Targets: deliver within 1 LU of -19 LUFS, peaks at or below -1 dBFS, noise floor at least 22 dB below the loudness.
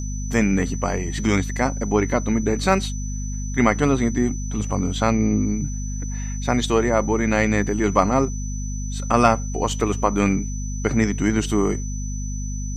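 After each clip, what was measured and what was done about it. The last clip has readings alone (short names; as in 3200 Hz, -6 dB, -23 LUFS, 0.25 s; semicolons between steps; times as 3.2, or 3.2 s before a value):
hum 50 Hz; harmonics up to 250 Hz; hum level -25 dBFS; steady tone 6000 Hz; tone level -36 dBFS; loudness -22.0 LUFS; peak -2.5 dBFS; loudness target -19.0 LUFS
-> notches 50/100/150/200/250 Hz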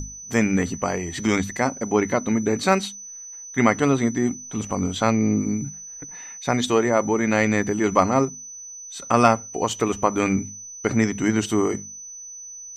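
hum none; steady tone 6000 Hz; tone level -36 dBFS
-> notch 6000 Hz, Q 30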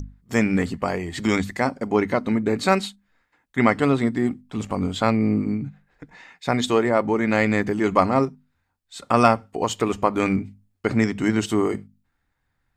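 steady tone none; loudness -22.5 LUFS; peak -3.0 dBFS; loudness target -19.0 LUFS
-> gain +3.5 dB; limiter -1 dBFS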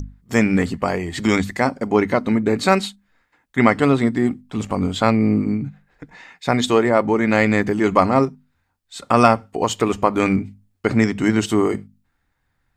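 loudness -19.0 LUFS; peak -1.0 dBFS; noise floor -71 dBFS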